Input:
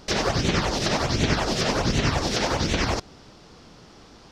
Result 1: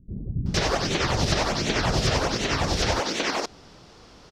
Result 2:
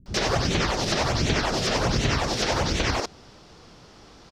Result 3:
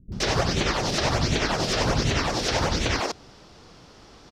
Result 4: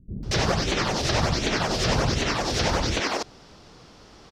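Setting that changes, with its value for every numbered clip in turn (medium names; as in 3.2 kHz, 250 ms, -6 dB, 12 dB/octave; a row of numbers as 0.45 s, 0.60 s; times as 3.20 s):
bands offset in time, time: 460 ms, 60 ms, 120 ms, 230 ms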